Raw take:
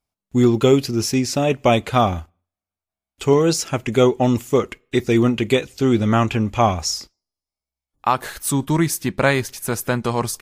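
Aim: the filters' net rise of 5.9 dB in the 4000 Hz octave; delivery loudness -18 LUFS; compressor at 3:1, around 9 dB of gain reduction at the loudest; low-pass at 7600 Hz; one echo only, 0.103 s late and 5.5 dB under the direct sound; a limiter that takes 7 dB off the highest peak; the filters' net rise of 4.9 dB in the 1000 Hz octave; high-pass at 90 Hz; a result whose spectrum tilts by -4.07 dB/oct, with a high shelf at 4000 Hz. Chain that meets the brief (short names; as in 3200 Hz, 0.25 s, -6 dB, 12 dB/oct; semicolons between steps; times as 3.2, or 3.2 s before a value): HPF 90 Hz; LPF 7600 Hz; bell 1000 Hz +6 dB; high shelf 4000 Hz +4.5 dB; bell 4000 Hz +5 dB; compressor 3:1, threshold -20 dBFS; limiter -12 dBFS; echo 0.103 s -5.5 dB; gain +6 dB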